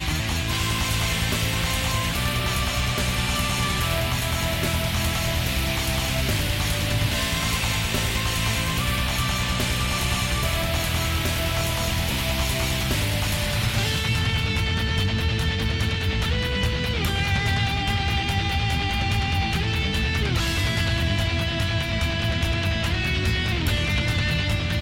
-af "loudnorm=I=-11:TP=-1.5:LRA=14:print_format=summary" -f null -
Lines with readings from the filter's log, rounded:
Input Integrated:    -23.3 LUFS
Input True Peak:     -12.1 dBTP
Input LRA:             0.3 LU
Input Threshold:     -33.3 LUFS